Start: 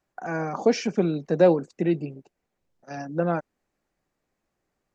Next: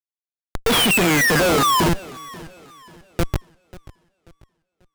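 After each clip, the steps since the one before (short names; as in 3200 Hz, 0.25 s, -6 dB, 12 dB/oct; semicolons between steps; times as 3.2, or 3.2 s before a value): painted sound fall, 0.66–1.89, 900–3700 Hz -20 dBFS; Schmitt trigger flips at -18.5 dBFS; warbling echo 0.538 s, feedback 36%, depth 118 cents, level -20 dB; gain +7 dB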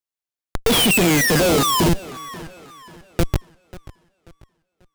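dynamic EQ 1400 Hz, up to -7 dB, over -33 dBFS, Q 0.81; gain +2.5 dB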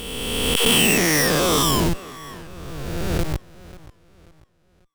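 spectral swells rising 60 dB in 2.24 s; gain -7 dB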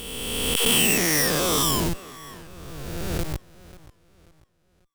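high shelf 5500 Hz +6 dB; gain -5 dB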